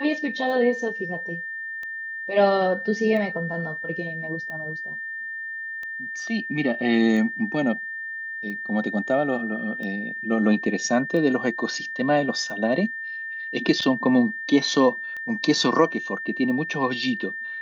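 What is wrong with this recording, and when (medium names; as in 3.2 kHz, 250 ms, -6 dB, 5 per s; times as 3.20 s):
tick 45 rpm -23 dBFS
whine 1.8 kHz -30 dBFS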